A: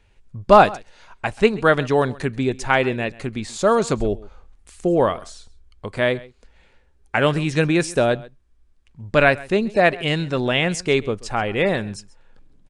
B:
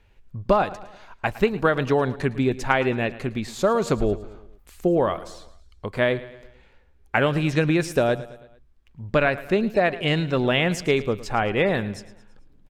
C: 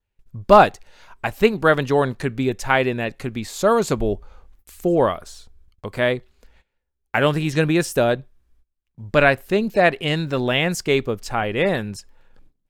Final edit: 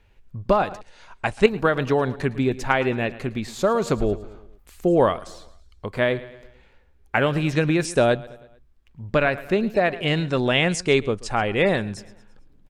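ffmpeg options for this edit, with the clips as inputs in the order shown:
-filter_complex "[0:a]asplit=4[s0][s1][s2][s3];[1:a]asplit=5[s4][s5][s6][s7][s8];[s4]atrim=end=0.812[s9];[s0]atrim=start=0.808:end=1.462[s10];[s5]atrim=start=1.458:end=4.872[s11];[s1]atrim=start=4.868:end=5.272[s12];[s6]atrim=start=5.268:end=7.852[s13];[s2]atrim=start=7.848:end=8.272[s14];[s7]atrim=start=8.268:end=10.282[s15];[s3]atrim=start=10.278:end=11.972[s16];[s8]atrim=start=11.968[s17];[s9][s10]acrossfade=d=0.004:c1=hsin:c2=hsin[s18];[s18][s11]acrossfade=d=0.004:c1=hsin:c2=hsin[s19];[s19][s12]acrossfade=d=0.004:c1=hsin:c2=hsin[s20];[s20][s13]acrossfade=d=0.004:c1=hsin:c2=hsin[s21];[s21][s14]acrossfade=d=0.004:c1=hsin:c2=hsin[s22];[s22][s15]acrossfade=d=0.004:c1=hsin:c2=hsin[s23];[s23][s16]acrossfade=d=0.004:c1=hsin:c2=hsin[s24];[s24][s17]acrossfade=d=0.004:c1=hsin:c2=hsin"

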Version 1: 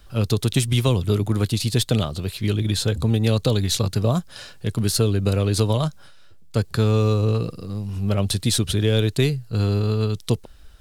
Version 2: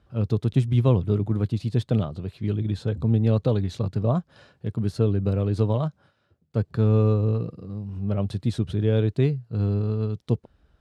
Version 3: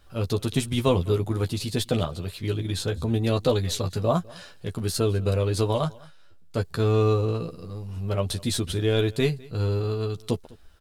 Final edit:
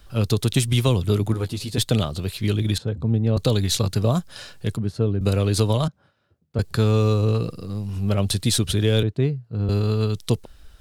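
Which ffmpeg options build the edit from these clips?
-filter_complex "[1:a]asplit=4[s0][s1][s2][s3];[0:a]asplit=6[s4][s5][s6][s7][s8][s9];[s4]atrim=end=1.342[s10];[2:a]atrim=start=1.338:end=1.782[s11];[s5]atrim=start=1.778:end=2.782[s12];[s0]atrim=start=2.778:end=3.372[s13];[s6]atrim=start=3.368:end=4.772[s14];[s1]atrim=start=4.768:end=5.212[s15];[s7]atrim=start=5.208:end=5.882[s16];[s2]atrim=start=5.878:end=6.592[s17];[s8]atrim=start=6.588:end=9.032[s18];[s3]atrim=start=9.028:end=9.692[s19];[s9]atrim=start=9.688[s20];[s10][s11]acrossfade=d=0.004:c1=hsin:c2=hsin[s21];[s21][s12]acrossfade=d=0.004:c1=hsin:c2=hsin[s22];[s22][s13]acrossfade=d=0.004:c1=hsin:c2=hsin[s23];[s23][s14]acrossfade=d=0.004:c1=hsin:c2=hsin[s24];[s24][s15]acrossfade=d=0.004:c1=hsin:c2=hsin[s25];[s25][s16]acrossfade=d=0.004:c1=hsin:c2=hsin[s26];[s26][s17]acrossfade=d=0.004:c1=hsin:c2=hsin[s27];[s27][s18]acrossfade=d=0.004:c1=hsin:c2=hsin[s28];[s28][s19]acrossfade=d=0.004:c1=hsin:c2=hsin[s29];[s29][s20]acrossfade=d=0.004:c1=hsin:c2=hsin"

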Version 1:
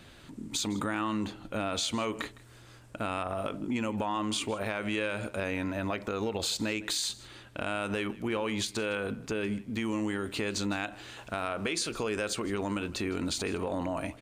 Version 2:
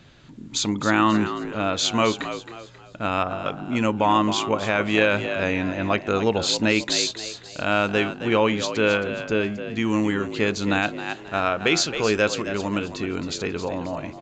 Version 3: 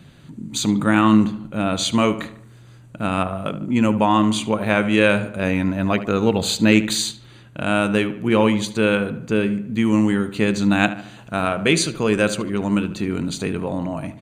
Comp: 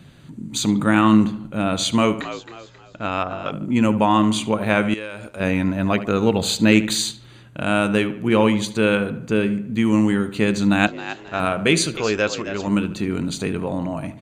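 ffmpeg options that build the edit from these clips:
-filter_complex "[1:a]asplit=3[s0][s1][s2];[2:a]asplit=5[s3][s4][s5][s6][s7];[s3]atrim=end=2.212[s8];[s0]atrim=start=2.208:end=3.522[s9];[s4]atrim=start=3.518:end=4.942[s10];[0:a]atrim=start=4.938:end=5.402[s11];[s5]atrim=start=5.398:end=10.872[s12];[s1]atrim=start=10.868:end=11.402[s13];[s6]atrim=start=11.398:end=11.972[s14];[s2]atrim=start=11.968:end=12.672[s15];[s7]atrim=start=12.668[s16];[s8][s9]acrossfade=d=0.004:c1=hsin:c2=hsin[s17];[s17][s10]acrossfade=d=0.004:c1=hsin:c2=hsin[s18];[s18][s11]acrossfade=d=0.004:c1=hsin:c2=hsin[s19];[s19][s12]acrossfade=d=0.004:c1=hsin:c2=hsin[s20];[s20][s13]acrossfade=d=0.004:c1=hsin:c2=hsin[s21];[s21][s14]acrossfade=d=0.004:c1=hsin:c2=hsin[s22];[s22][s15]acrossfade=d=0.004:c1=hsin:c2=hsin[s23];[s23][s16]acrossfade=d=0.004:c1=hsin:c2=hsin"

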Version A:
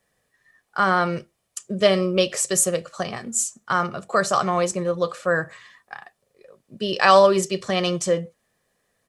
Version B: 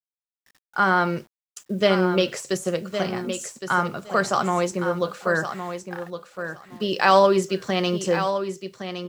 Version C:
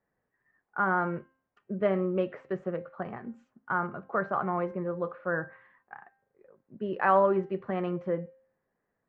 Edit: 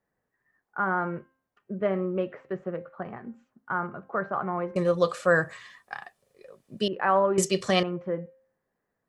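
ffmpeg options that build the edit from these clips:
-filter_complex "[0:a]asplit=2[s0][s1];[2:a]asplit=3[s2][s3][s4];[s2]atrim=end=4.762[s5];[s0]atrim=start=4.758:end=6.882[s6];[s3]atrim=start=6.878:end=7.382[s7];[s1]atrim=start=7.378:end=7.832[s8];[s4]atrim=start=7.828[s9];[s5][s6]acrossfade=d=0.004:c1=hsin:c2=hsin[s10];[s10][s7]acrossfade=d=0.004:c1=hsin:c2=hsin[s11];[s11][s8]acrossfade=d=0.004:c1=hsin:c2=hsin[s12];[s12][s9]acrossfade=d=0.004:c1=hsin:c2=hsin"

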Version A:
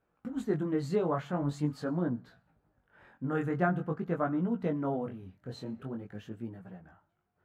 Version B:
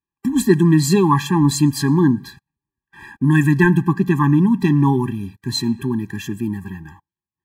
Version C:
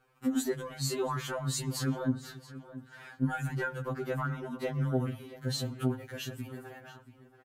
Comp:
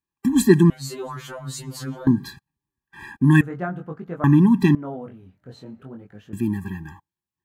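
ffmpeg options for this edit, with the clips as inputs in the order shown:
-filter_complex "[0:a]asplit=2[s0][s1];[1:a]asplit=4[s2][s3][s4][s5];[s2]atrim=end=0.702[s6];[2:a]atrim=start=0.698:end=2.072[s7];[s3]atrim=start=2.068:end=3.412[s8];[s0]atrim=start=3.408:end=4.242[s9];[s4]atrim=start=4.238:end=4.752[s10];[s1]atrim=start=4.748:end=6.332[s11];[s5]atrim=start=6.328[s12];[s6][s7]acrossfade=d=0.004:c1=hsin:c2=hsin[s13];[s13][s8]acrossfade=d=0.004:c1=hsin:c2=hsin[s14];[s14][s9]acrossfade=d=0.004:c1=hsin:c2=hsin[s15];[s15][s10]acrossfade=d=0.004:c1=hsin:c2=hsin[s16];[s16][s11]acrossfade=d=0.004:c1=hsin:c2=hsin[s17];[s17][s12]acrossfade=d=0.004:c1=hsin:c2=hsin"

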